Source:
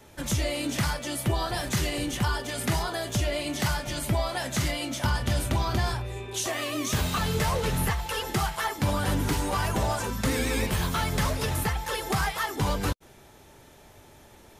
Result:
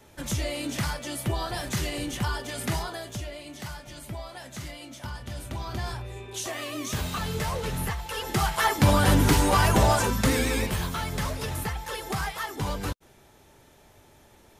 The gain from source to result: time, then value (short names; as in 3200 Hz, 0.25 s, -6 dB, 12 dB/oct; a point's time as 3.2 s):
2.76 s -2 dB
3.37 s -11 dB
5.31 s -11 dB
6.04 s -3.5 dB
8.08 s -3.5 dB
8.69 s +6.5 dB
9.98 s +6.5 dB
10.96 s -3.5 dB